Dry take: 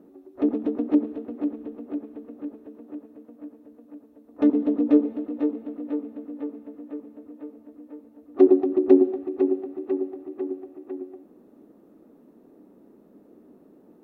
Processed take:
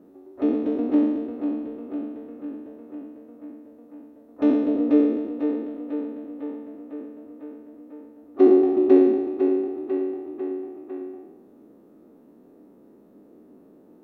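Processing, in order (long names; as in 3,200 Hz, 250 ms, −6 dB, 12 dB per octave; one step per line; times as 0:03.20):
peak hold with a decay on every bin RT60 1.15 s
level −1.5 dB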